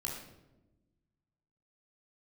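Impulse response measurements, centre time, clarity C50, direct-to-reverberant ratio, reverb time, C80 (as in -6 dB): 49 ms, 2.5 dB, -3.5 dB, 1.0 s, 5.5 dB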